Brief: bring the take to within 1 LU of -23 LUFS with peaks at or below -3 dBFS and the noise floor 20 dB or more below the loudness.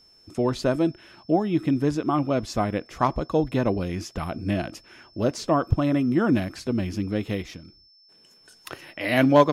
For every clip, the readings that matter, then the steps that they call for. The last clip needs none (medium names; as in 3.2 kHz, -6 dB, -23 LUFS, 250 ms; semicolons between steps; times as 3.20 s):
steady tone 5.3 kHz; tone level -54 dBFS; loudness -25.0 LUFS; peak level -3.5 dBFS; loudness target -23.0 LUFS
-> band-stop 5.3 kHz, Q 30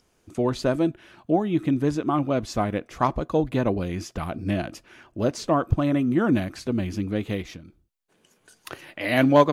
steady tone not found; loudness -25.0 LUFS; peak level -3.5 dBFS; loudness target -23.0 LUFS
-> trim +2 dB; peak limiter -3 dBFS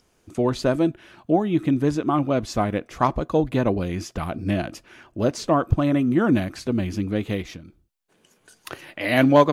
loudness -23.0 LUFS; peak level -3.0 dBFS; noise floor -64 dBFS